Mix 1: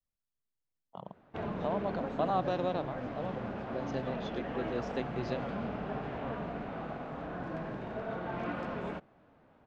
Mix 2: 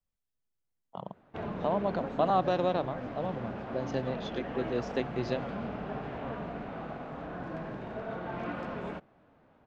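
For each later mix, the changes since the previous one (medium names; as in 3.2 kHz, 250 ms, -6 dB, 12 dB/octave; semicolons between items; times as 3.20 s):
speech +4.5 dB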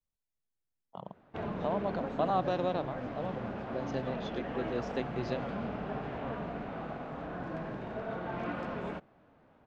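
speech -3.5 dB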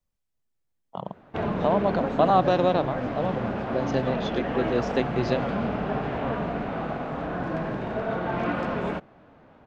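speech +10.0 dB; background +9.5 dB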